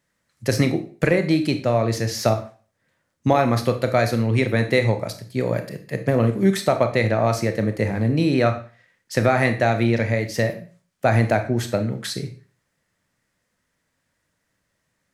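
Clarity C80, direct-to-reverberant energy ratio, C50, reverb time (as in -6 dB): 16.0 dB, 7.0 dB, 11.5 dB, 0.40 s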